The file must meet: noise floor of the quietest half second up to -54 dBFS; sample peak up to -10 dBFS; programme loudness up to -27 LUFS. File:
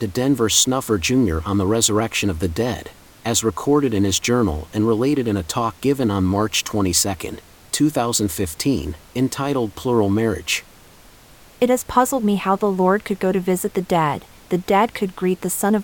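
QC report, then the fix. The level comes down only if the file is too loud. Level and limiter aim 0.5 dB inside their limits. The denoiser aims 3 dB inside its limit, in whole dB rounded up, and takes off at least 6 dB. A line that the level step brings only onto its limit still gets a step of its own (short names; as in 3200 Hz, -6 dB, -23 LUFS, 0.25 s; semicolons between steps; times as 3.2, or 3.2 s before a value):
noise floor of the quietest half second -47 dBFS: fail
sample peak -2.5 dBFS: fail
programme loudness -19.5 LUFS: fail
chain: gain -8 dB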